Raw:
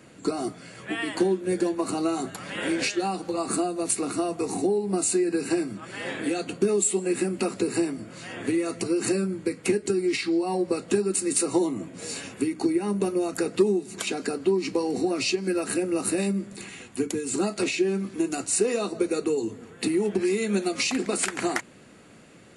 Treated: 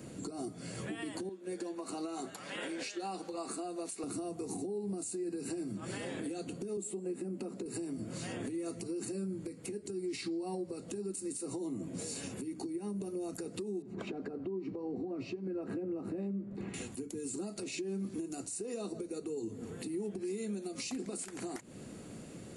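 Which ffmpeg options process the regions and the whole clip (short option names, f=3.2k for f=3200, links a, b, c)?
-filter_complex "[0:a]asettb=1/sr,asplit=3[a][b][c];[a]atrim=end=1.294[d];[b]atrim=start=1.29:end=4.04,asetpts=PTS-STARTPTS,afade=t=in:d=0.004:c=qsin,afade=t=out:st=2.746:d=0.004:c=qsin,highpass=f=1.1k:p=1,aemphasis=mode=reproduction:type=50kf[e];[c]atrim=start=4.036[f];[d][e]acrossfade=d=0.004:c1=hsin:c2=qsin[g];[g][f]acrossfade=d=0.004:c1=qsin:c2=hsin,asettb=1/sr,asplit=3[h][i][j];[h]atrim=end=6.774[k];[i]atrim=start=6.77:end=7.66,asetpts=PTS-STARTPTS,afade=t=in:d=0.004:c=qsin,afade=t=out:st=0.886:d=0.004:c=qsin,highpass=f=150:w=0.5412,highpass=f=150:w=1.3066,highshelf=f=2k:g=-11[l];[j]atrim=start=7.656[m];[k][l]acrossfade=d=0.004:c1=hsin:c2=qsin[n];[n][m]acrossfade=d=0.004:c1=qsin:c2=hsin,asettb=1/sr,asplit=3[o][p][q];[o]atrim=end=13.824[r];[p]atrim=start=13.82:end=16.74,asetpts=PTS-STARTPTS,afade=t=in:d=0.004:c=qsin,afade=t=out:st=2.916:d=0.004:c=qsin,lowpass=1.5k,aecho=1:1:86:0.0891,atrim=end_sample=128772[s];[q]atrim=start=16.736[t];[r][s]acrossfade=d=0.004:c1=hsin:c2=qsin[u];[u][t]acrossfade=d=0.004:c1=qsin:c2=hsin,equalizer=f=1.8k:w=0.43:g=-11.5,acompressor=threshold=-40dB:ratio=4,alimiter=level_in=12.5dB:limit=-24dB:level=0:latency=1:release=148,volume=-12.5dB,volume=6dB"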